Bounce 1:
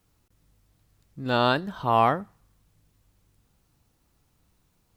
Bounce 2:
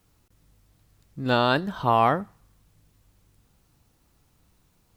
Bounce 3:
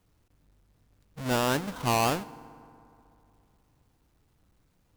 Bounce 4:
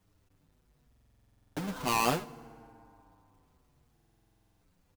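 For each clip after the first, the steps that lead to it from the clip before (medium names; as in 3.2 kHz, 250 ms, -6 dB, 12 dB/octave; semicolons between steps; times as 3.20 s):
peak limiter -12.5 dBFS, peak gain reduction 4.5 dB; trim +3.5 dB
square wave that keeps the level; FDN reverb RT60 2.7 s, high-frequency decay 0.5×, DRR 18 dB; trim -9 dB
buffer glitch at 0.87/3.92 s, samples 2048, times 14; endless flanger 7.1 ms -0.67 Hz; trim +1.5 dB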